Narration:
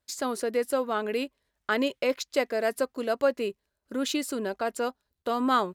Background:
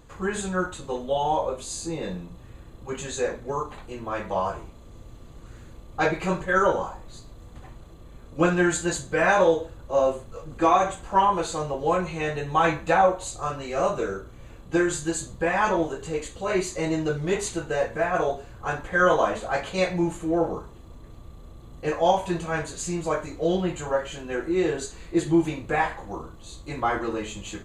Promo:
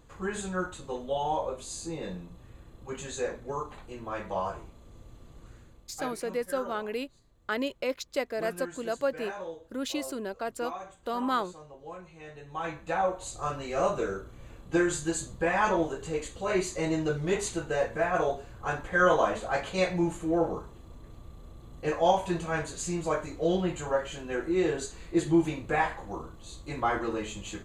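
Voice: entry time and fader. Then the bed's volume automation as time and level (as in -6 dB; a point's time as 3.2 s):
5.80 s, -4.5 dB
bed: 5.47 s -5.5 dB
6.23 s -20 dB
12.14 s -20 dB
13.47 s -3 dB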